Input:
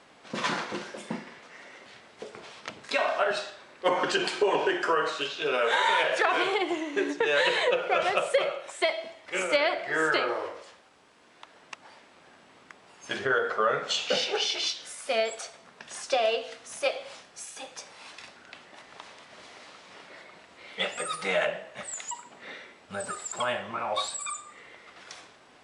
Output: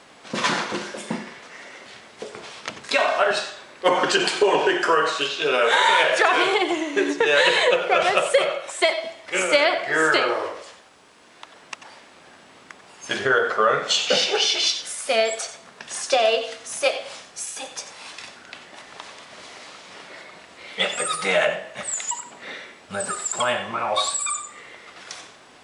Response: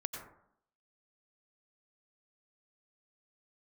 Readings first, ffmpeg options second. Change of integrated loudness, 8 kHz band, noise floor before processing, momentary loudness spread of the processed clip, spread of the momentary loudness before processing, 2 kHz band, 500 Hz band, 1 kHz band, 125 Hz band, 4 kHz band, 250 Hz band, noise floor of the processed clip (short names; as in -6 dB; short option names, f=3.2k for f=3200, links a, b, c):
+7.0 dB, +10.0 dB, -56 dBFS, 22 LU, 22 LU, +7.0 dB, +6.5 dB, +6.5 dB, +6.0 dB, +8.0 dB, +6.5 dB, -49 dBFS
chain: -filter_complex "[0:a]asplit=2[a][b];[1:a]atrim=start_sample=2205,atrim=end_sample=4410,highshelf=f=4.3k:g=8.5[c];[b][c]afir=irnorm=-1:irlink=0,volume=2dB[d];[a][d]amix=inputs=2:normalize=0"